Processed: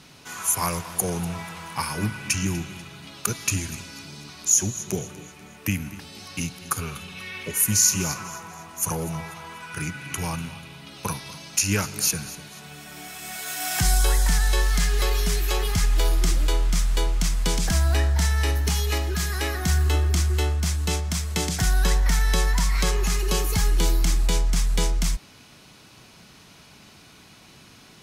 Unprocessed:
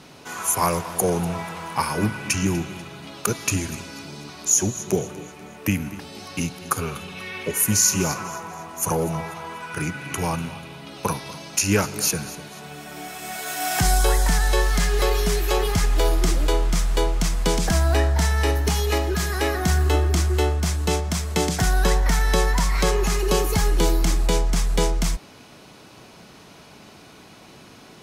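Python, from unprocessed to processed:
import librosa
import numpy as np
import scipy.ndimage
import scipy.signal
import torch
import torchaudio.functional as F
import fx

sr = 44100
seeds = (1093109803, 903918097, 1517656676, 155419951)

y = fx.peak_eq(x, sr, hz=510.0, db=-8.5, octaves=2.6)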